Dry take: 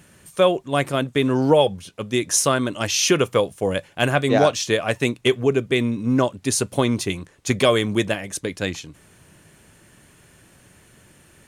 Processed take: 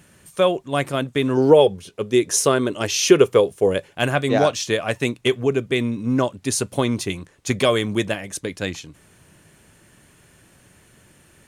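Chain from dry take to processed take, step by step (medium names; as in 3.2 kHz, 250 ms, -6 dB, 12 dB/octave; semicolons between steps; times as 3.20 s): 1.37–3.91 s: peaking EQ 410 Hz +10.5 dB 0.49 oct; trim -1 dB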